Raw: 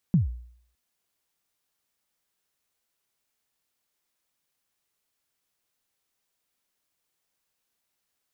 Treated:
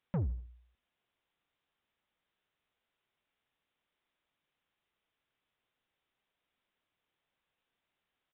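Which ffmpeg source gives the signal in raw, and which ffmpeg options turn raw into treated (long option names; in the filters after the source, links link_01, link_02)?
-f lavfi -i "aevalsrc='0.2*pow(10,-3*t/0.61)*sin(2*PI*(200*0.136/log(60/200)*(exp(log(60/200)*min(t,0.136)/0.136)-1)+60*max(t-0.136,0)))':duration=0.61:sample_rate=44100"
-af "aresample=8000,asoftclip=type=tanh:threshold=-29.5dB,aresample=44100,aecho=1:1:78|156|234:0.0794|0.0334|0.014"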